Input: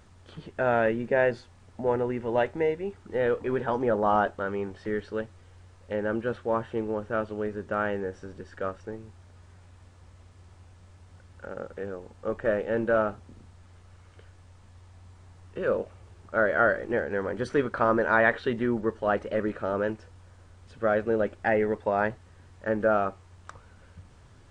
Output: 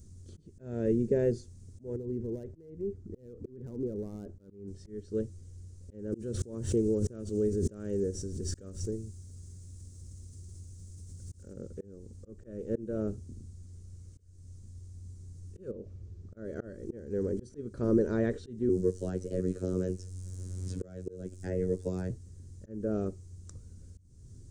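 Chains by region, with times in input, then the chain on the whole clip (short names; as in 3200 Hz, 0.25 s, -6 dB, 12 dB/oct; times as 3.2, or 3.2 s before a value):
1.96–4.68 LPF 1000 Hz 6 dB/oct + compressor 12:1, threshold -31 dBFS + hard clip -30 dBFS
6.12–11.53 high shelf 4200 Hz +9 dB + backwards sustainer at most 50 dB/s
15.71–16.37 LPF 3500 Hz + compressor 2.5:1, threshold -34 dBFS
18.69–22.1 high shelf 3400 Hz +8 dB + robotiser 91.9 Hz + three-band squash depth 70%
whole clip: EQ curve 120 Hz 0 dB, 390 Hz -6 dB, 810 Hz -30 dB, 3000 Hz -24 dB, 6200 Hz 0 dB; auto swell 0.34 s; dynamic EQ 430 Hz, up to +6 dB, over -50 dBFS, Q 1.8; gain +5 dB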